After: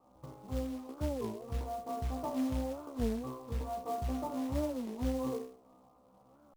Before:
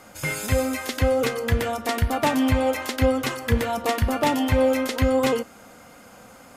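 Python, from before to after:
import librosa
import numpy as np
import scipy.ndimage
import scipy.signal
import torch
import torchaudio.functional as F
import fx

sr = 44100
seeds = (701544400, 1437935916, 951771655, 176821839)

y = scipy.signal.sosfilt(scipy.signal.cheby1(6, 1.0, 1200.0, 'lowpass', fs=sr, output='sos'), x)
y = fx.comb_fb(y, sr, f0_hz=64.0, decay_s=0.46, harmonics='all', damping=0.0, mix_pct=100)
y = fx.quant_float(y, sr, bits=2)
y = fx.record_warp(y, sr, rpm=33.33, depth_cents=250.0)
y = y * librosa.db_to_amplitude(-4.0)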